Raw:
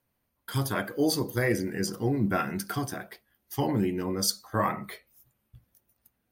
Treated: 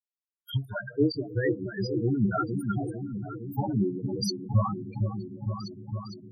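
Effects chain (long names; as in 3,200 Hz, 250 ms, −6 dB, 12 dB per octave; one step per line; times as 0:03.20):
spectral dynamics exaggerated over time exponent 2
noise gate −53 dBFS, range −16 dB
0:04.44–0:04.92: octave-band graphic EQ 125/250/500/2,000 Hz +12/+6/−4/−10 dB
in parallel at +2 dB: downward compressor 12 to 1, threshold −39 dBFS, peak gain reduction 18 dB
on the sum: echo whose low-pass opens from repeat to repeat 459 ms, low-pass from 750 Hz, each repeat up 2 octaves, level −6 dB
0:02.97–0:03.58: gain into a clipping stage and back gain 34 dB
comb and all-pass reverb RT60 4.5 s, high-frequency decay 0.6×, pre-delay 110 ms, DRR 14 dB
spectral peaks only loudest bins 8
0:00.65–0:01.58: high-frequency loss of the air 130 metres
every ending faded ahead of time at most 250 dB per second
level +2.5 dB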